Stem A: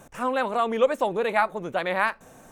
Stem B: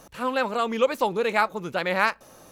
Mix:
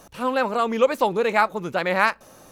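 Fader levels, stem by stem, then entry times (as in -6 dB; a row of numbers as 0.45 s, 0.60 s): -8.5 dB, +1.0 dB; 0.00 s, 0.00 s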